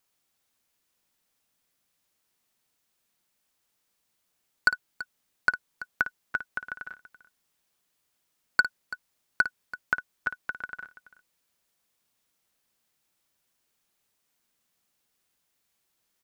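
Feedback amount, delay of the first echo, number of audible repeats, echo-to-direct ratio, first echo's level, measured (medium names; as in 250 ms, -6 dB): no regular repeats, 55 ms, 2, -10.5 dB, -12.0 dB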